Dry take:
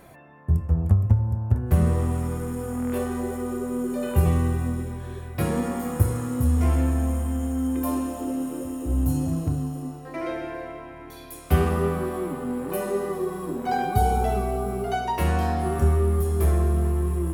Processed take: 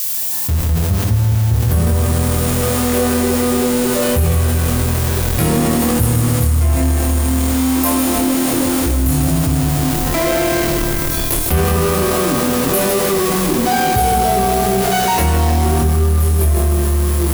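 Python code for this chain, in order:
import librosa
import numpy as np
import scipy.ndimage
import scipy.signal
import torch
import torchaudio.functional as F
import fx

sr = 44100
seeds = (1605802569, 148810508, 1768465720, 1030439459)

p1 = fx.fade_in_head(x, sr, length_s=1.07)
p2 = fx.schmitt(p1, sr, flips_db=-33.5)
p3 = p1 + (p2 * librosa.db_to_amplitude(-8.0))
p4 = fx.dmg_noise_colour(p3, sr, seeds[0], colour='blue', level_db=-49.0)
p5 = fx.high_shelf(p4, sr, hz=3700.0, db=10.5)
p6 = fx.doubler(p5, sr, ms=26.0, db=-5.0)
p7 = fx.echo_feedback(p6, sr, ms=155, feedback_pct=55, wet_db=-8.0)
p8 = fx.env_flatten(p7, sr, amount_pct=70)
y = p8 * librosa.db_to_amplitude(-1.5)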